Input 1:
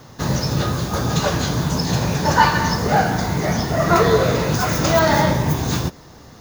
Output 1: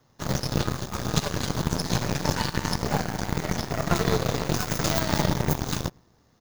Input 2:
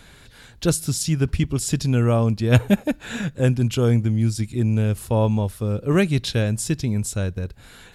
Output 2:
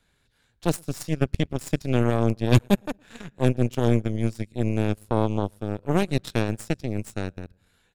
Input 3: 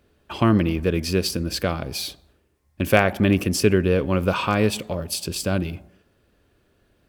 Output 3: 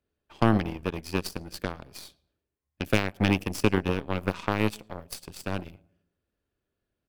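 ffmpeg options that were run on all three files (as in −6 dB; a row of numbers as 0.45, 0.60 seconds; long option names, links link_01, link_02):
-filter_complex "[0:a]acrossover=split=350|3000[link_01][link_02][link_03];[link_02]acompressor=threshold=-24dB:ratio=6[link_04];[link_01][link_04][link_03]amix=inputs=3:normalize=0,asplit=2[link_05][link_06];[link_06]adelay=113,lowpass=frequency=1900:poles=1,volume=-18dB,asplit=2[link_07][link_08];[link_08]adelay=113,lowpass=frequency=1900:poles=1,volume=0.5,asplit=2[link_09][link_10];[link_10]adelay=113,lowpass=frequency=1900:poles=1,volume=0.5,asplit=2[link_11][link_12];[link_12]adelay=113,lowpass=frequency=1900:poles=1,volume=0.5[link_13];[link_05][link_07][link_09][link_11][link_13]amix=inputs=5:normalize=0,aeval=exprs='0.668*(cos(1*acos(clip(val(0)/0.668,-1,1)))-cos(1*PI/2))+0.0596*(cos(4*acos(clip(val(0)/0.668,-1,1)))-cos(4*PI/2))+0.0841*(cos(7*acos(clip(val(0)/0.668,-1,1)))-cos(7*PI/2))+0.0119*(cos(8*acos(clip(val(0)/0.668,-1,1)))-cos(8*PI/2))':channel_layout=same,volume=-2dB"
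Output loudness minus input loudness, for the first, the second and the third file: −8.5, −4.0, −6.5 LU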